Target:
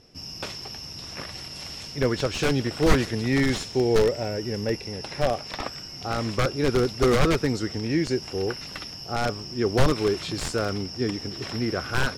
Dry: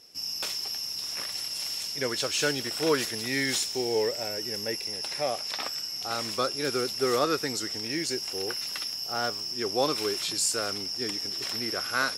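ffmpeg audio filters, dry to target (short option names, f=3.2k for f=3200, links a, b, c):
-af "aeval=exprs='(mod(8.41*val(0)+1,2)-1)/8.41':c=same,aemphasis=mode=reproduction:type=riaa,volume=4dB"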